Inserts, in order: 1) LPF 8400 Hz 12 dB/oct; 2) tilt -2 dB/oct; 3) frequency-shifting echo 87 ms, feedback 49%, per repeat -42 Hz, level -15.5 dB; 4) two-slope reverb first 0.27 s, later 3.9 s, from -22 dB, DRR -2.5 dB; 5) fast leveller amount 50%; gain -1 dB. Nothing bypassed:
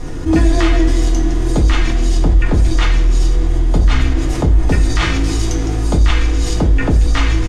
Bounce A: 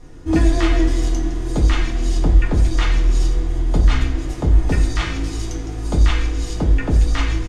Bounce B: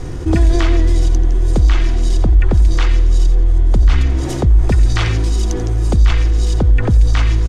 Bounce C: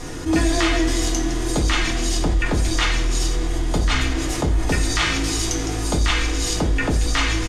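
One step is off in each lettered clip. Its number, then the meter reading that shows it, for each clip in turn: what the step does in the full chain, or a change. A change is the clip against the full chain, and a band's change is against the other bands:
5, crest factor change +2.5 dB; 4, 125 Hz band +5.5 dB; 2, 125 Hz band -8.0 dB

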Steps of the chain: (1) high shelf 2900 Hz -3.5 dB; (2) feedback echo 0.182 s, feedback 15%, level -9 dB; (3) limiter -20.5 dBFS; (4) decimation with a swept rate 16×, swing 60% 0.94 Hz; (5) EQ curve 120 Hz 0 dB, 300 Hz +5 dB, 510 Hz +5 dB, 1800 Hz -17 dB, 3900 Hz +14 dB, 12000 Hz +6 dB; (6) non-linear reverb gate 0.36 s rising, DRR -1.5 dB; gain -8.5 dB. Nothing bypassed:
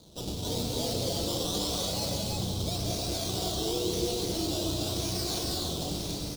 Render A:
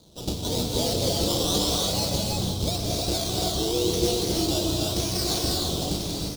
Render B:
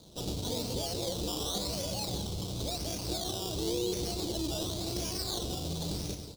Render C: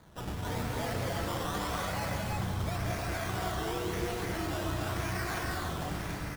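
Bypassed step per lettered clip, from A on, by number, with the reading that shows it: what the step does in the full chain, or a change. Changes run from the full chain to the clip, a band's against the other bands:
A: 3, mean gain reduction 4.5 dB; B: 6, loudness change -3.5 LU; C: 5, loudness change -3.5 LU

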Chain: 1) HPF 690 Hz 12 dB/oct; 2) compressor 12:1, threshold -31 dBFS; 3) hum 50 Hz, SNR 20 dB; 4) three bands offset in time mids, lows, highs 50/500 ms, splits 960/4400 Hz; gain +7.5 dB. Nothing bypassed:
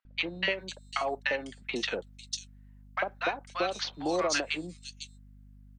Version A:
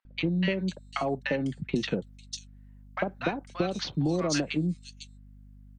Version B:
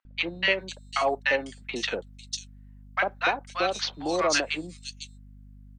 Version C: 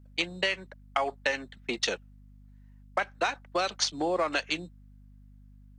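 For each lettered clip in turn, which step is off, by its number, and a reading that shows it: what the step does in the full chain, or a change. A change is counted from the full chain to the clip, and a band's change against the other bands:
1, 125 Hz band +18.0 dB; 2, mean gain reduction 3.0 dB; 4, echo-to-direct -5.0 dB to none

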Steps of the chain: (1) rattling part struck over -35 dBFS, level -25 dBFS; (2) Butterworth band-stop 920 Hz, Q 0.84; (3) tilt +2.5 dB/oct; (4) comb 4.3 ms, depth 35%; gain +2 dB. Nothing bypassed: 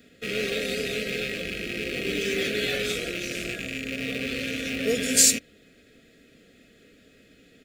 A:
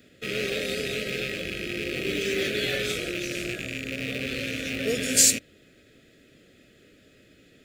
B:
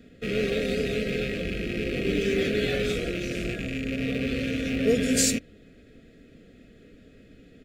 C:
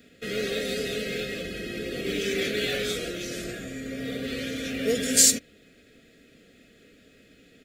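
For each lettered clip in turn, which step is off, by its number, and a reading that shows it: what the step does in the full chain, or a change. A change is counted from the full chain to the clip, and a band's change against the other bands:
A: 4, 125 Hz band +2.5 dB; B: 3, 125 Hz band +8.5 dB; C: 1, 2 kHz band -4.0 dB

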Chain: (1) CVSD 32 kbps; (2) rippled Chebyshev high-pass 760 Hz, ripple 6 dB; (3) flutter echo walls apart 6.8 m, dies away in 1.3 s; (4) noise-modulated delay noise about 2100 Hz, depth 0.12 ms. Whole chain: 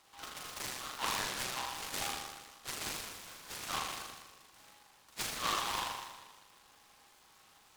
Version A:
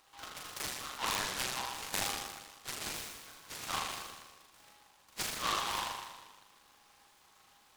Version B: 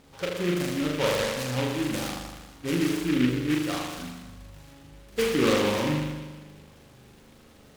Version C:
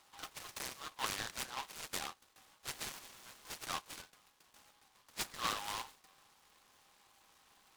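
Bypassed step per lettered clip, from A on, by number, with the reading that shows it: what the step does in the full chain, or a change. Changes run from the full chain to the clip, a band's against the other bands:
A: 1, momentary loudness spread change -3 LU; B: 2, 250 Hz band +20.0 dB; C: 3, momentary loudness spread change -5 LU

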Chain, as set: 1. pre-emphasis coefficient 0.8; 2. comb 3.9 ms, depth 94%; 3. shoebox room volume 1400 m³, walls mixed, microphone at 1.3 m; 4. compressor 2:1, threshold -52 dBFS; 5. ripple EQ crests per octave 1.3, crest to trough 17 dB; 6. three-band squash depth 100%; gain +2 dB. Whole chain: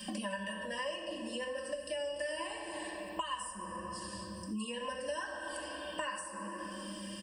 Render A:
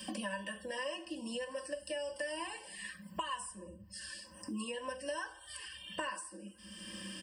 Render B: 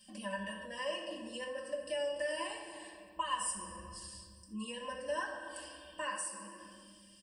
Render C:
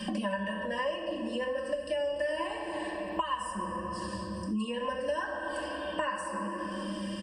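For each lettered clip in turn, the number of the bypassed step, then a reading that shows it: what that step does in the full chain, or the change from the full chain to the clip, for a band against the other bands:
3, momentary loudness spread change +3 LU; 6, momentary loudness spread change +8 LU; 1, 8 kHz band -10.5 dB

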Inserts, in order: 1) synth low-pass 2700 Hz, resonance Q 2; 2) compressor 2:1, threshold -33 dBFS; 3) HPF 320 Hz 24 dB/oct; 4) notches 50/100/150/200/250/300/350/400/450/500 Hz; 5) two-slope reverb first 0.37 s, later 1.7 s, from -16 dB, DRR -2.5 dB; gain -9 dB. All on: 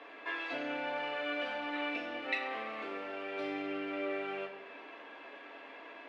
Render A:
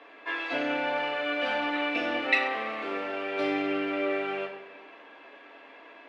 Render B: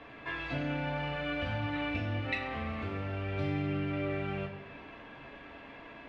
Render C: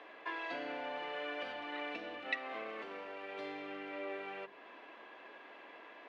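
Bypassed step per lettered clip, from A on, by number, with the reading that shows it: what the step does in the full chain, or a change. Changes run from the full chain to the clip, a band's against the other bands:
2, mean gain reduction 5.5 dB; 3, 125 Hz band +29.5 dB; 5, loudness change -4.5 LU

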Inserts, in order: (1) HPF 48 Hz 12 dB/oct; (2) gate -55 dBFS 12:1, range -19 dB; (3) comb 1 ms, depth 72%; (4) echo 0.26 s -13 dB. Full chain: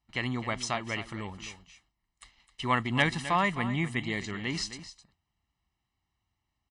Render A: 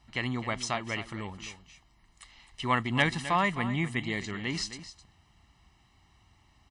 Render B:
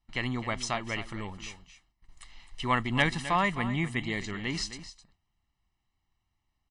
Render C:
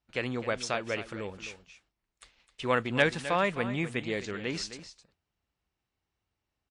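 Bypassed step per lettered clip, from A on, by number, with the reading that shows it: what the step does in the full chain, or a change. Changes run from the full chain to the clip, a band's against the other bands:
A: 2, momentary loudness spread change +3 LU; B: 1, momentary loudness spread change +2 LU; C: 3, 500 Hz band +8.0 dB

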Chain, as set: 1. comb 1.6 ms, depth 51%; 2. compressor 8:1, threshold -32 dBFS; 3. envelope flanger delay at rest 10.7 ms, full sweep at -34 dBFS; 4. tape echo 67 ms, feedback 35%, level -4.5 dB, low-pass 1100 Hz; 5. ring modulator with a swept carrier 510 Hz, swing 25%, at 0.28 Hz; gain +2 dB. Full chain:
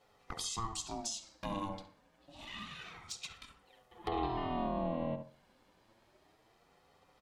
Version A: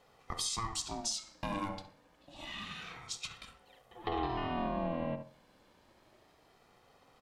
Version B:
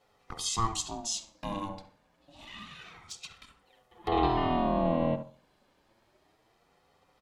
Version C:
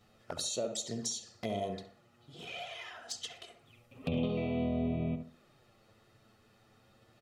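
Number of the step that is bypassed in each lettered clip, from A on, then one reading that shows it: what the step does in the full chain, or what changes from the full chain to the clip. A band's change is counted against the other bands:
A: 3, 2 kHz band +3.0 dB; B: 2, mean gain reduction 4.0 dB; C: 5, crest factor change -1.5 dB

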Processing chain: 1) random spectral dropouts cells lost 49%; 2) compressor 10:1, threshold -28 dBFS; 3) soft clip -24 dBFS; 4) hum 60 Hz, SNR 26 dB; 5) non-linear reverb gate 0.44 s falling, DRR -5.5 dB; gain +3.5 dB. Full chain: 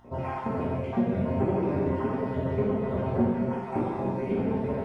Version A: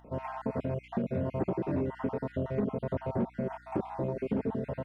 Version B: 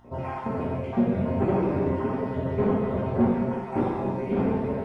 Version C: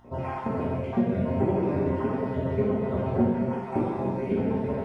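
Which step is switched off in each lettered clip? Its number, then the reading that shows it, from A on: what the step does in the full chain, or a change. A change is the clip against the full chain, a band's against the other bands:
5, crest factor change -2.0 dB; 2, mean gain reduction 1.5 dB; 3, distortion -19 dB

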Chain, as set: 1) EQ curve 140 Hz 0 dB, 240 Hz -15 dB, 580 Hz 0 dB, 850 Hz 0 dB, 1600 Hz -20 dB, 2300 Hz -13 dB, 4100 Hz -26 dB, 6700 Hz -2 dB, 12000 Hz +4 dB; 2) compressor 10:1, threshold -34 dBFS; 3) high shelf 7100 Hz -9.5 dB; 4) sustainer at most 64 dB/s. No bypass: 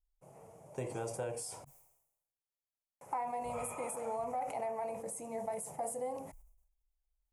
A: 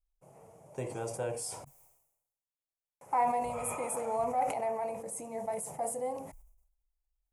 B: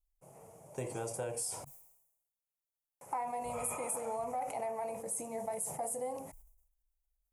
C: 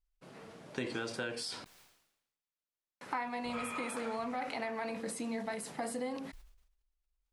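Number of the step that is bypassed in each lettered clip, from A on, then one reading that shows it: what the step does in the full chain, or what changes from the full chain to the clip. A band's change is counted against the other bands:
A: 2, mean gain reduction 3.0 dB; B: 3, 8 kHz band +6.0 dB; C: 1, loudness change +1.0 LU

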